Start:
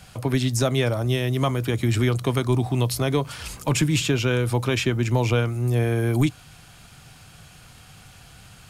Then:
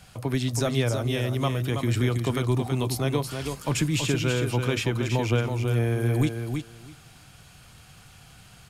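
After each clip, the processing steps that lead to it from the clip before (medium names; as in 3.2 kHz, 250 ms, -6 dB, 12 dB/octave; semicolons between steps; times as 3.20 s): feedback delay 326 ms, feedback 15%, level -6 dB; trim -4 dB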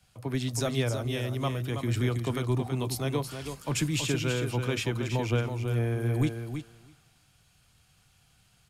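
three bands expanded up and down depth 40%; trim -4 dB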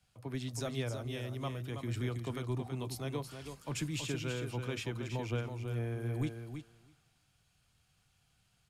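treble shelf 11 kHz -4 dB; trim -8.5 dB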